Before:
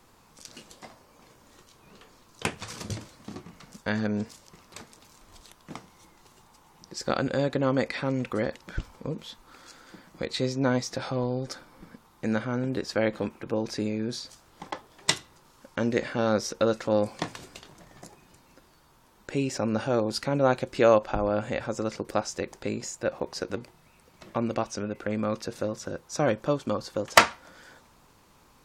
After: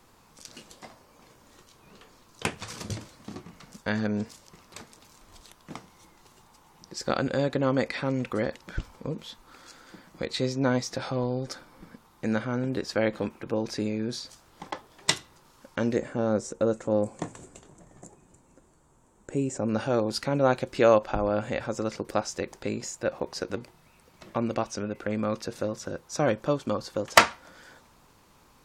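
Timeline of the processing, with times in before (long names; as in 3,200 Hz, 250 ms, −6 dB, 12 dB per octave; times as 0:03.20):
0:15.96–0:19.69: drawn EQ curve 440 Hz 0 dB, 5,000 Hz −15 dB, 7,600 Hz +5 dB, 13,000 Hz −17 dB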